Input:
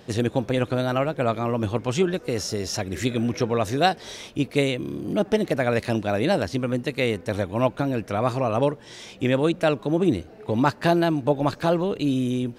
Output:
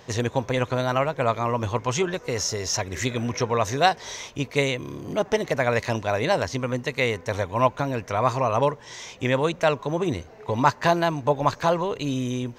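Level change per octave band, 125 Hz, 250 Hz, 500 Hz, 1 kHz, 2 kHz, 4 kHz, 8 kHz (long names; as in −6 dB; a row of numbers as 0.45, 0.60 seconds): −1.0, −5.0, −0.5, +3.5, +2.5, +1.0, +5.5 decibels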